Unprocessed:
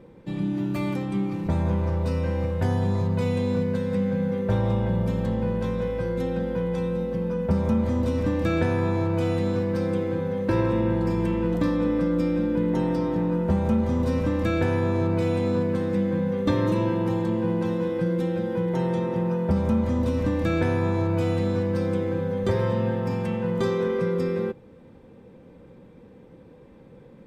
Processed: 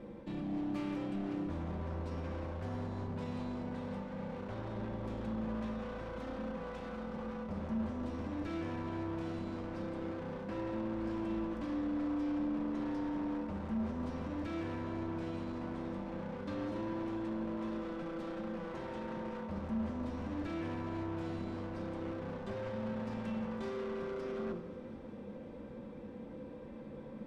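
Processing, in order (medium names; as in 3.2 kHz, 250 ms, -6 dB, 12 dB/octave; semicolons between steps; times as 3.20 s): bass shelf 220 Hz -5.5 dB; band-stop 410 Hz, Q 12; de-hum 58.06 Hz, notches 6; reverse; compression 10:1, threshold -35 dBFS, peak gain reduction 15.5 dB; reverse; peak limiter -33.5 dBFS, peak gain reduction 6.5 dB; wavefolder -38 dBFS; distance through air 51 m; thinning echo 184 ms, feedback 83%, level -18 dB; on a send at -3.5 dB: reverberation RT60 0.75 s, pre-delay 3 ms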